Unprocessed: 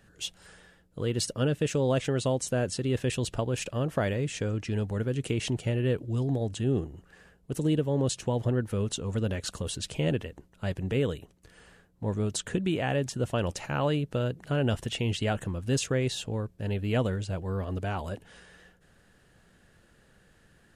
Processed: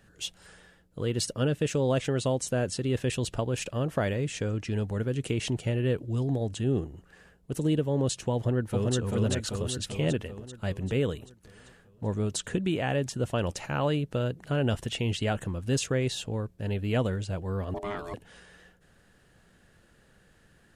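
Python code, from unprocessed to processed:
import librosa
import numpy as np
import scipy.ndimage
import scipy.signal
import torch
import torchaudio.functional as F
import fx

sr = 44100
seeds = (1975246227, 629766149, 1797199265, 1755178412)

y = fx.echo_throw(x, sr, start_s=8.34, length_s=0.61, ms=390, feedback_pct=60, wet_db=-1.0)
y = fx.ring_mod(y, sr, carrier_hz=510.0, at=(17.74, 18.14))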